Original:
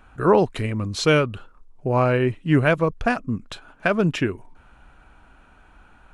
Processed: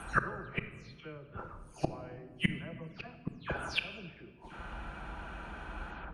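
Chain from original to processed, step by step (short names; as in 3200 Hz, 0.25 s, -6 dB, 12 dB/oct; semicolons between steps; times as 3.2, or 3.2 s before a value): spectral delay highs early, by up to 0.233 s; HPF 40 Hz 24 dB/oct; flipped gate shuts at -23 dBFS, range -39 dB; high shelf 8200 Hz -11.5 dB; notch 7500 Hz, Q 9; shoebox room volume 1400 m³, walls mixed, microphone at 0.75 m; gain +9.5 dB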